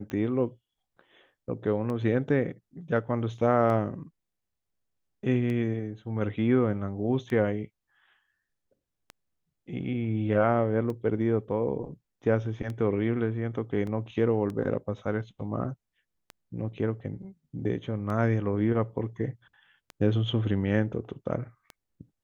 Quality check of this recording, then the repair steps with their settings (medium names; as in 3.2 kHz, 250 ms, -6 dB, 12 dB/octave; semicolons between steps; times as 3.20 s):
tick 33 1/3 rpm -24 dBFS
13.87 s: dropout 2.9 ms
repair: de-click; interpolate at 13.87 s, 2.9 ms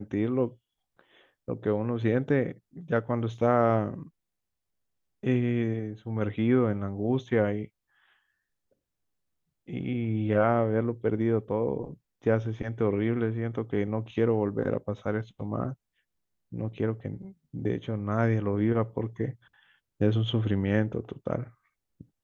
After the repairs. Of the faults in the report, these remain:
nothing left